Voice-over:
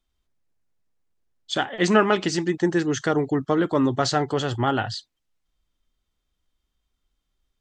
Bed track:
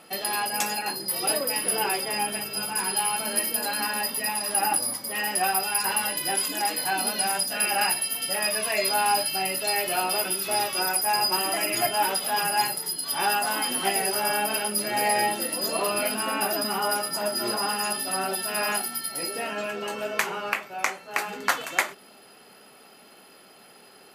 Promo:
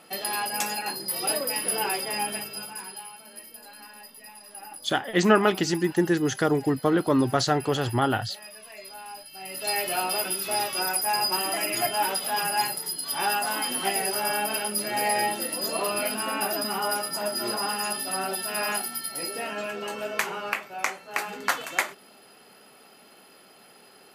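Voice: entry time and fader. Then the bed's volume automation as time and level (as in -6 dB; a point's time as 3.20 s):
3.35 s, -1.0 dB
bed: 2.36 s -1.5 dB
3.17 s -18.5 dB
9.29 s -18.5 dB
9.69 s -1.5 dB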